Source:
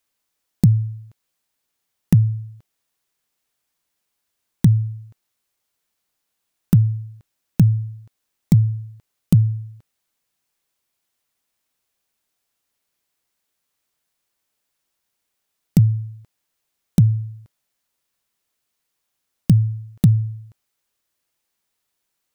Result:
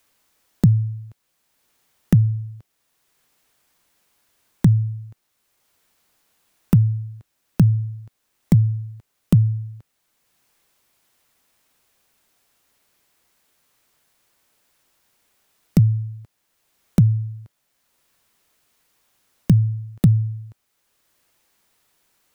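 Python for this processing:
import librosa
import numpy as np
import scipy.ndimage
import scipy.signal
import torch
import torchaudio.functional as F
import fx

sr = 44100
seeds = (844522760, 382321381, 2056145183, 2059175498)

y = fx.band_squash(x, sr, depth_pct=40)
y = y * librosa.db_to_amplitude(1.0)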